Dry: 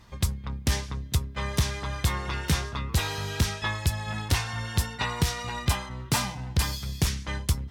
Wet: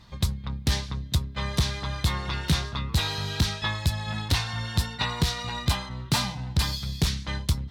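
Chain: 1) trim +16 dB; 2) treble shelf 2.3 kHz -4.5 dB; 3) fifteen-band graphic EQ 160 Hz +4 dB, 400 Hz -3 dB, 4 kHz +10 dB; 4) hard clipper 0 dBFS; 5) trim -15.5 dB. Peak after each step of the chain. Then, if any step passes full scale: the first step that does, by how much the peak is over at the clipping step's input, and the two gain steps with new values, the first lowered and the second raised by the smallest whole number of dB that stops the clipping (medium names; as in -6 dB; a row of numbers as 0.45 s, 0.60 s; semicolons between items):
+4.5 dBFS, +4.0 dBFS, +7.0 dBFS, 0.0 dBFS, -15.5 dBFS; step 1, 7.0 dB; step 1 +9 dB, step 5 -8.5 dB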